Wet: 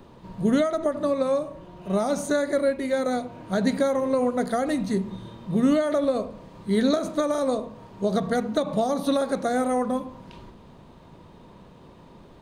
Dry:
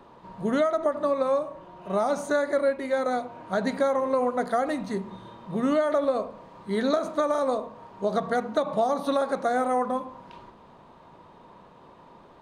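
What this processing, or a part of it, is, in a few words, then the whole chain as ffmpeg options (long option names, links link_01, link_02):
smiley-face EQ: -af "lowshelf=frequency=160:gain=7.5,equalizer=frequency=1000:width_type=o:width=1.8:gain=-8.5,highshelf=frequency=8100:gain=5,volume=4.5dB"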